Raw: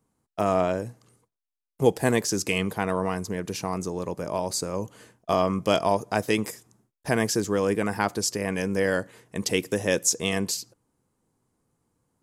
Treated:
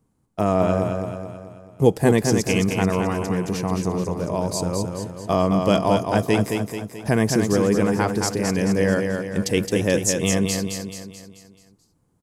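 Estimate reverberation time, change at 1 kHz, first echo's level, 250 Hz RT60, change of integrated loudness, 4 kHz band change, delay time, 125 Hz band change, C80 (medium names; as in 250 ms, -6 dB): no reverb, +3.0 dB, -5.0 dB, no reverb, +4.5 dB, +1.5 dB, 217 ms, +9.0 dB, no reverb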